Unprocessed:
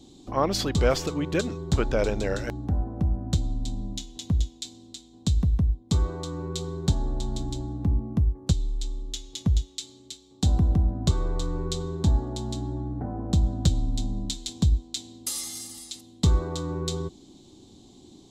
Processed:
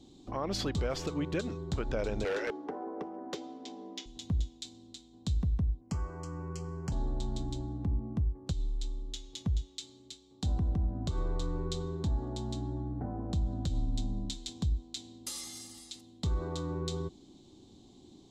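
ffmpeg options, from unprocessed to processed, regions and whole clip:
-filter_complex "[0:a]asettb=1/sr,asplit=3[s0][s1][s2];[s0]atrim=end=2.254[s3];[s1]atrim=start=2.25:end=4.06,asetpts=PTS-STARTPTS,afade=t=in:d=0.004:c=qsin,afade=t=out:st=1.806:d=0.004:c=qsin,highpass=f=350:w=0.5412,highpass=f=350:w=1.3066,equalizer=f=430:t=q:w=4:g=8,equalizer=f=630:t=q:w=4:g=-4,equalizer=f=1000:t=q:w=4:g=3,equalizer=f=2000:t=q:w=4:g=5,equalizer=f=4000:t=q:w=4:g=-10,lowpass=f=5600:w=0.5412,lowpass=f=5600:w=1.3066,volume=33.5,asoftclip=hard,volume=0.0299,acontrast=58[s4];[s2]atrim=start=4.056[s5];[s3][s4]acrossfade=d=0.004:c1=hsin:c2=qsin[s6];[s6][s5]acrossfade=d=0.004:c1=qsin:c2=hsin,asettb=1/sr,asplit=3[s7][s8][s9];[s7]atrim=end=5.814[s10];[s8]atrim=start=5.81:end=6.92,asetpts=PTS-STARTPTS,afade=t=in:d=0.004:c=qsin,afade=t=out:st=1.106:d=0.004:c=qsin,asuperstop=centerf=3700:order=4:qfactor=1.8,acrossover=split=240|480|4700[s11][s12][s13][s14];[s11]acompressor=threshold=0.0398:ratio=3[s15];[s12]acompressor=threshold=0.00224:ratio=3[s16];[s13]acompressor=threshold=0.00501:ratio=3[s17];[s14]acompressor=threshold=0.00708:ratio=3[s18];[s15][s16][s17][s18]amix=inputs=4:normalize=0,equalizer=f=1700:w=0.58:g=6[s19];[s9]atrim=start=6.916[s20];[s10][s19]acrossfade=d=0.004:c1=hsin:c2=qsin[s21];[s21][s20]acrossfade=d=0.004:c1=qsin:c2=hsin,highshelf=f=9400:g=-12,alimiter=limit=0.119:level=0:latency=1:release=89,volume=0.562"

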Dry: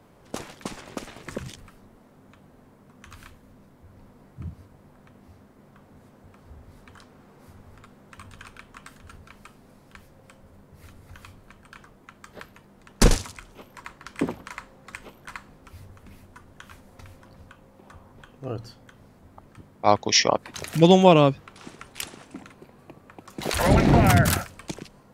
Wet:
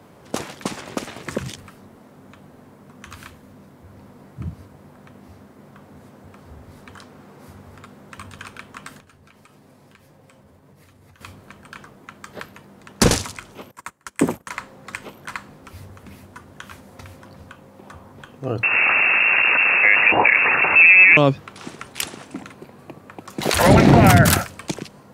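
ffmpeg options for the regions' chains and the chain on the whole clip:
-filter_complex "[0:a]asettb=1/sr,asplit=3[s0][s1][s2];[s0]atrim=end=9.004[s3];[s1]atrim=start=9:end=11.21,asetpts=PTS-STARTPTS,afade=t=in:d=0.004:c=qsin,afade=t=out:st=2.206:d=0.004:c=qsin,bandreject=f=1400:w=18,acompressor=threshold=0.00355:ratio=5:attack=3.2:release=140:knee=1:detection=peak,flanger=delay=6.1:depth=2.8:regen=-44:speed=1.7:shape=triangular[s4];[s2]atrim=start=11.206[s5];[s3][s4]acrossfade=d=0.004:c1=hsin:c2=qsin[s6];[s6][s5]acrossfade=d=0.004:c1=qsin:c2=hsin,asettb=1/sr,asplit=3[s7][s8][s9];[s7]atrim=end=13.714[s10];[s8]atrim=start=13.71:end=14.5,asetpts=PTS-STARTPTS,afade=t=in:d=0.004:c=qsin,afade=t=out:st=0.786:d=0.004:c=qsin,highshelf=f=5900:t=q:w=1.5:g=8,agate=range=0.0891:threshold=0.00794:ratio=16:release=100:detection=peak[s11];[s9]atrim=start=14.496[s12];[s10][s11]acrossfade=d=0.004:c1=hsin:c2=qsin[s13];[s13][s12]acrossfade=d=0.004:c1=qsin:c2=hsin,asettb=1/sr,asplit=3[s14][s15][s16];[s14]atrim=end=18.634[s17];[s15]atrim=start=18.63:end=21.17,asetpts=PTS-STARTPTS,afade=t=in:d=0.004:c=qsin,afade=t=out:st=2.536:d=0.004:c=qsin,aeval=exprs='val(0)+0.5*0.126*sgn(val(0))':c=same,lowpass=f=2400:t=q:w=0.5098,lowpass=f=2400:t=q:w=0.6013,lowpass=f=2400:t=q:w=0.9,lowpass=f=2400:t=q:w=2.563,afreqshift=-2800[s18];[s16]atrim=start=21.166[s19];[s17][s18]acrossfade=d=0.004:c1=hsin:c2=qsin[s20];[s20][s19]acrossfade=d=0.004:c1=qsin:c2=hsin,highpass=84,alimiter=level_in=2.66:limit=0.891:release=50:level=0:latency=1,volume=0.891"

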